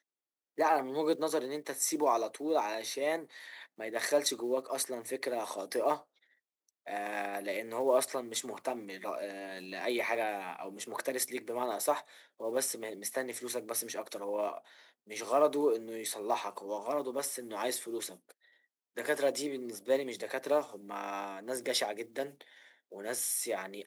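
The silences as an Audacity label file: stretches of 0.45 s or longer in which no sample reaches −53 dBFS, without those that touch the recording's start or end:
6.030000	6.690000	silence
18.320000	18.970000	silence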